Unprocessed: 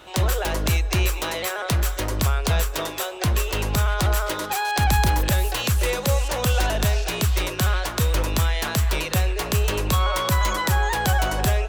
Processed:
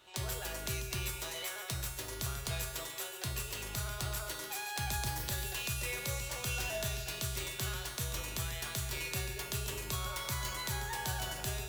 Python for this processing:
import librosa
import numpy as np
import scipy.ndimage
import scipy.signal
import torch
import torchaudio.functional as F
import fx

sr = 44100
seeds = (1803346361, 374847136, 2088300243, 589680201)

p1 = fx.high_shelf(x, sr, hz=2100.0, db=9.0)
p2 = fx.comb_fb(p1, sr, f0_hz=130.0, decay_s=1.0, harmonics='odd', damping=0.0, mix_pct=90)
p3 = p2 + fx.echo_single(p2, sr, ms=141, db=-10.0, dry=0)
y = F.gain(torch.from_numpy(p3), -2.0).numpy()